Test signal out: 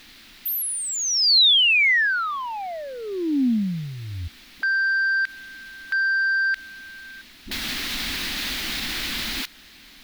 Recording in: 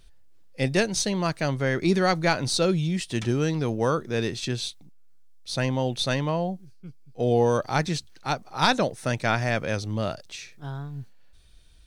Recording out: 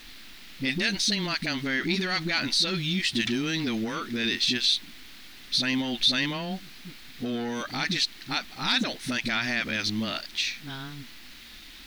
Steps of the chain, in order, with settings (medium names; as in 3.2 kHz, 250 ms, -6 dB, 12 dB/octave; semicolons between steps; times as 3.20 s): phase dispersion highs, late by 56 ms, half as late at 320 Hz; saturation -15 dBFS; added noise pink -53 dBFS; bass shelf 460 Hz -5.5 dB; peak limiter -25.5 dBFS; graphic EQ 125/250/500/1000/2000/4000/8000 Hz -11/+10/-11/-5/+6/+10/-6 dB; trim +4.5 dB